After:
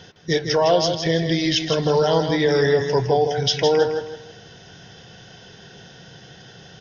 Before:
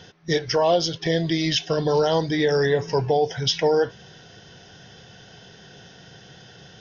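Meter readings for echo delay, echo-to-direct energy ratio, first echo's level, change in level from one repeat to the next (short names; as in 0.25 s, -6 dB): 0.16 s, -6.5 dB, -7.0 dB, -10.0 dB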